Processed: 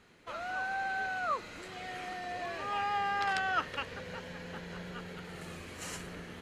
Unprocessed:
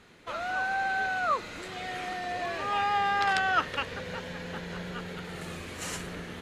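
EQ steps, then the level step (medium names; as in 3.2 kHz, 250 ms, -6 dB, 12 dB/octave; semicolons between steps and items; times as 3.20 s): band-stop 3.6 kHz, Q 19; -5.5 dB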